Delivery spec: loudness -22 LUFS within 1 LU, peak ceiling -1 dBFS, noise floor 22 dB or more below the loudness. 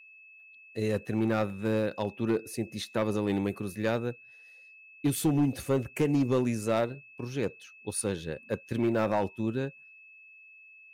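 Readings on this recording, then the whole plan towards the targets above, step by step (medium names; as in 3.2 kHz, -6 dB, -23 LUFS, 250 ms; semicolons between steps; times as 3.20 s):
clipped samples 0.9%; clipping level -19.5 dBFS; steady tone 2.6 kHz; tone level -51 dBFS; loudness -30.5 LUFS; peak level -19.5 dBFS; loudness target -22.0 LUFS
-> clip repair -19.5 dBFS; band-stop 2.6 kHz, Q 30; trim +8.5 dB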